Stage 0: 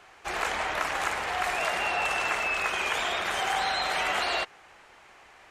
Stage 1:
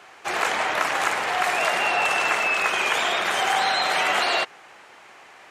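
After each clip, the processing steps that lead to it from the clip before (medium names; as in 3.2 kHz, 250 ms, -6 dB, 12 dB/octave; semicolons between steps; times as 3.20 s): high-pass 150 Hz 12 dB/octave; trim +6 dB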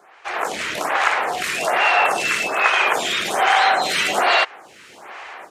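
level rider gain up to 13.5 dB; lamp-driven phase shifter 1.2 Hz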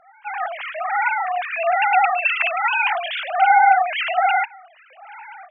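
formants replaced by sine waves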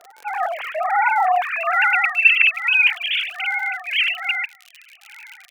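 crackle 73 per s -29 dBFS; high-pass sweep 470 Hz -> 2.6 kHz, 0.91–2.31 s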